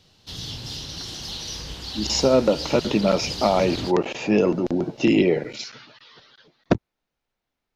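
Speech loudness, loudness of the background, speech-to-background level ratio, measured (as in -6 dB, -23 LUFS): -21.5 LUFS, -31.5 LUFS, 10.0 dB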